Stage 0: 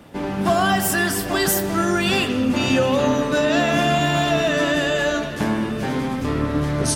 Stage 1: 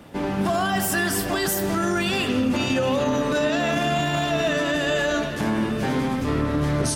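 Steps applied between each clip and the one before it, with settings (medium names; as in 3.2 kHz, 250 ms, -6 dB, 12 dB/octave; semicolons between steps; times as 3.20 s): peak limiter -14 dBFS, peak gain reduction 7 dB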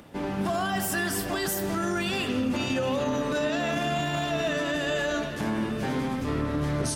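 upward compressor, threshold -44 dBFS; trim -5 dB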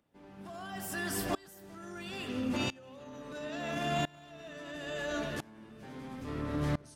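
sawtooth tremolo in dB swelling 0.74 Hz, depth 26 dB; trim -2 dB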